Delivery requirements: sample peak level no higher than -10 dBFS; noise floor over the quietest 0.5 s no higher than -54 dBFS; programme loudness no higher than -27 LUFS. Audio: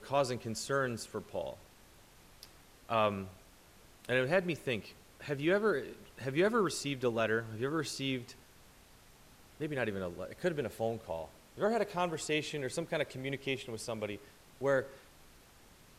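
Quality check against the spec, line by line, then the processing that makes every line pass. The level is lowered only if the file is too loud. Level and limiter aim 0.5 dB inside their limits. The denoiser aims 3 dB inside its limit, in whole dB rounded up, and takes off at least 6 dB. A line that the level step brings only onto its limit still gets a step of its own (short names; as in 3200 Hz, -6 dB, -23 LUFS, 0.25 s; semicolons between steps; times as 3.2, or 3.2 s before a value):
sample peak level -16.0 dBFS: OK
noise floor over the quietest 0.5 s -60 dBFS: OK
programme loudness -35.0 LUFS: OK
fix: none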